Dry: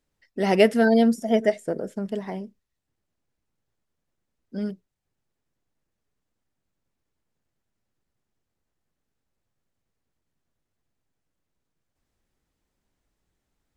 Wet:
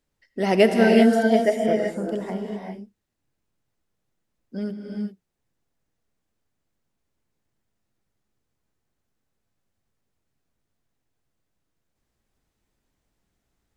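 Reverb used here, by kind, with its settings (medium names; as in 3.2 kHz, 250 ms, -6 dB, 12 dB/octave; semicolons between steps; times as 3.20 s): gated-style reverb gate 420 ms rising, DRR 1.5 dB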